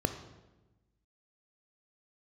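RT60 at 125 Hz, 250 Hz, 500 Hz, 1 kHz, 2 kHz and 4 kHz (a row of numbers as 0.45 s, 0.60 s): 1.5 s, 1.4 s, 1.2 s, 1.0 s, 0.90 s, 0.80 s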